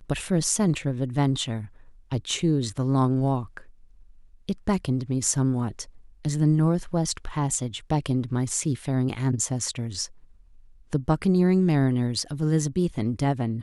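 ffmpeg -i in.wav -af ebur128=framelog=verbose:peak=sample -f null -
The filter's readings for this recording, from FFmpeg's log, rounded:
Integrated loudness:
  I:         -25.3 LUFS
  Threshold: -35.9 LUFS
Loudness range:
  LRA:         3.0 LU
  Threshold: -46.1 LUFS
  LRA low:   -27.8 LUFS
  LRA high:  -24.8 LUFS
Sample peak:
  Peak:       -7.9 dBFS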